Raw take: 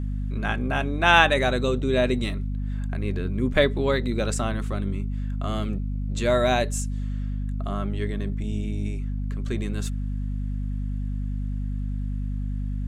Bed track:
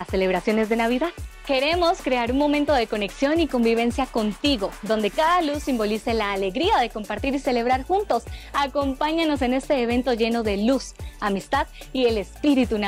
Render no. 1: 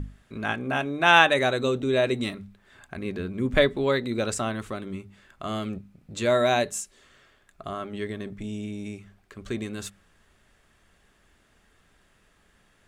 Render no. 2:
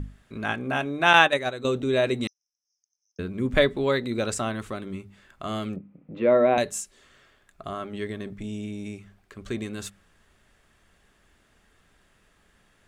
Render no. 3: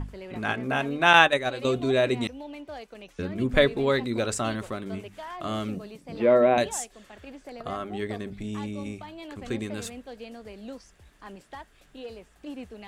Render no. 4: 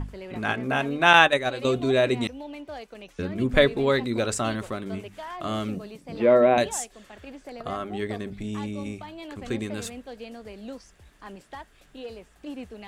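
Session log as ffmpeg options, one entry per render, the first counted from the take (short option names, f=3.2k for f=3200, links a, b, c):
-af "bandreject=f=50:t=h:w=6,bandreject=f=100:t=h:w=6,bandreject=f=150:t=h:w=6,bandreject=f=200:t=h:w=6,bandreject=f=250:t=h:w=6"
-filter_complex "[0:a]asettb=1/sr,asplit=3[a][b][c];[a]atrim=end=1.134[d];[b]atrim=start=1.13:end=1.65,asetpts=PTS-STARTPTS,afade=t=in:d=0.004:c=qsin,afade=t=out:st=0.516:d=0.004:c=qsin,agate=range=-9dB:threshold=-22dB:ratio=16:release=100:detection=peak[e];[c]atrim=start=1.646[f];[d][e]acrossfade=d=0.004:c1=hsin:c2=qsin[g];[g][f]acrossfade=d=0.004:c1=qsin:c2=hsin,asettb=1/sr,asplit=3[h][i][j];[h]atrim=end=2.274[k];[i]atrim=start=2.27:end=3.19,asetpts=PTS-STARTPTS,afade=t=in:d=0.004:c=qsin,afade=t=out:st=0.916:d=0.004:c=qsin,asuperpass=centerf=5700:order=12:qfactor=4.2[l];[j]atrim=start=3.186[m];[k][l]acrossfade=d=0.004:c1=hsin:c2=qsin[n];[n][m]acrossfade=d=0.004:c1=qsin:c2=hsin,asettb=1/sr,asplit=3[o][p][q];[o]atrim=end=5.764[r];[p]atrim=start=5.76:end=6.58,asetpts=PTS-STARTPTS,afade=t=in:d=0.004:c=qsin,afade=t=out:st=0.816:d=0.004:c=qsin,highpass=110,equalizer=f=110:t=q:w=4:g=-9,equalizer=f=160:t=q:w=4:g=6,equalizer=f=290:t=q:w=4:g=9,equalizer=f=510:t=q:w=4:g=8,equalizer=f=1.6k:t=q:w=4:g=-7,lowpass=f=2.3k:w=0.5412,lowpass=f=2.3k:w=1.3066[s];[q]atrim=start=6.576[t];[r][s]acrossfade=d=0.004:c1=hsin:c2=qsin[u];[u][t]acrossfade=d=0.004:c1=qsin:c2=hsin"
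-filter_complex "[1:a]volume=-20dB[a];[0:a][a]amix=inputs=2:normalize=0"
-af "volume=1.5dB,alimiter=limit=-1dB:level=0:latency=1"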